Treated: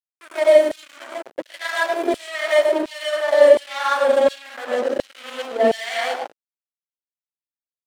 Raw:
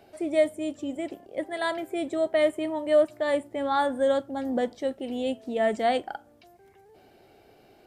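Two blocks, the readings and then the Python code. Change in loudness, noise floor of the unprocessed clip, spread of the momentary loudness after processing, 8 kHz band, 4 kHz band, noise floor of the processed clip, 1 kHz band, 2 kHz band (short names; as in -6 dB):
+8.0 dB, -57 dBFS, 19 LU, n/a, +9.5 dB, under -85 dBFS, +5.0 dB, +10.0 dB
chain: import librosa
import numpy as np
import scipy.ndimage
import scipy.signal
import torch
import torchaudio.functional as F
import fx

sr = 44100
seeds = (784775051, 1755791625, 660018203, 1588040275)

p1 = x + fx.echo_thinned(x, sr, ms=106, feedback_pct=26, hz=240.0, wet_db=-7.5, dry=0)
p2 = fx.rev_gated(p1, sr, seeds[0], gate_ms=180, shape='rising', drr_db=-5.0)
p3 = fx.backlash(p2, sr, play_db=-21.0)
p4 = fx.filter_lfo_highpass(p3, sr, shape='saw_down', hz=1.4, low_hz=310.0, high_hz=4200.0, q=1.2)
y = F.gain(torch.from_numpy(p4), 4.5).numpy()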